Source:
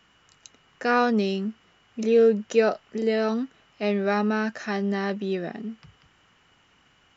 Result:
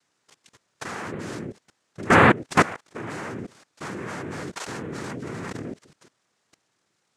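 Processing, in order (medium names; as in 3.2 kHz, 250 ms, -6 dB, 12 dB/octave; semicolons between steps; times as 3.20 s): noise-vocoded speech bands 3; level held to a coarse grid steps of 20 dB; trim +6.5 dB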